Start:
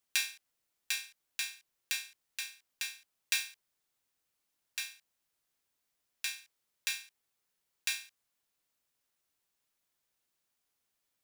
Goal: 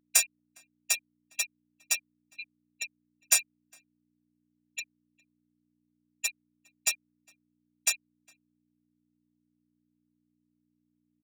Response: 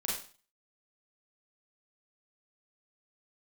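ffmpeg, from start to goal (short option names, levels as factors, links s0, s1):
-filter_complex "[0:a]agate=range=0.0224:threshold=0.00251:ratio=3:detection=peak,afftfilt=real='re*gte(hypot(re,im),0.0501)':imag='im*gte(hypot(re,im),0.0501)':win_size=1024:overlap=0.75,asplit=2[s0][s1];[s1]alimiter=level_in=1.19:limit=0.0631:level=0:latency=1:release=106,volume=0.841,volume=1[s2];[s0][s2]amix=inputs=2:normalize=0,aeval=exprs='clip(val(0),-1,0.0422)':c=same,aexciter=amount=8.6:drive=4.9:freq=5900,aeval=exprs='val(0)+0.00251*(sin(2*PI*60*n/s)+sin(2*PI*2*60*n/s)/2+sin(2*PI*3*60*n/s)/3+sin(2*PI*4*60*n/s)/4+sin(2*PI*5*60*n/s)/5)':c=same,highpass=f=620:t=q:w=5.1,asplit=2[s3][s4];[s4]adelay=408.2,volume=0.0398,highshelf=f=4000:g=-9.18[s5];[s3][s5]amix=inputs=2:normalize=0"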